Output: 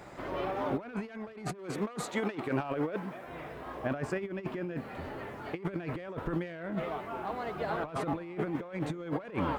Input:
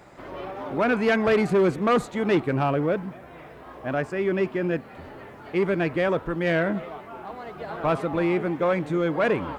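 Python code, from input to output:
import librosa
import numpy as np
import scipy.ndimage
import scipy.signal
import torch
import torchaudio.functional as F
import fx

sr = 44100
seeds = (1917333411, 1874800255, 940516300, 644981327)

y = fx.highpass(x, sr, hz=390.0, slope=6, at=(1.57, 3.27), fade=0.02)
y = fx.over_compress(y, sr, threshold_db=-29.0, ratio=-0.5)
y = y * librosa.db_to_amplitude(-4.5)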